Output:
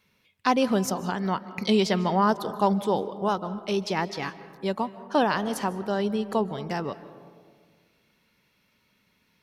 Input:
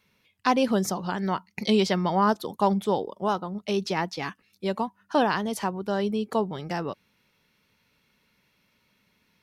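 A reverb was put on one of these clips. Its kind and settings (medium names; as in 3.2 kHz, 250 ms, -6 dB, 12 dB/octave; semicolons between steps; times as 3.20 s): algorithmic reverb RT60 1.8 s, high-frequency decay 0.3×, pre-delay 110 ms, DRR 14.5 dB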